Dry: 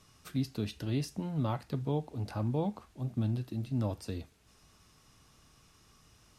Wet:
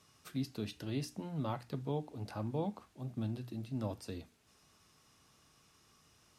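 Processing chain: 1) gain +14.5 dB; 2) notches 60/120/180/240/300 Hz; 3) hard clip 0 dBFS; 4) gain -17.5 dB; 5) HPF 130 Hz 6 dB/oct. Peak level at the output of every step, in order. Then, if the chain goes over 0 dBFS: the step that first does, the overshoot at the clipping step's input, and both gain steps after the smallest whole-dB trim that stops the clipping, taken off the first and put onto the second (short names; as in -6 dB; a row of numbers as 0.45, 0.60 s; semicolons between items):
-5.0, -5.0, -5.0, -22.5, -25.0 dBFS; no overload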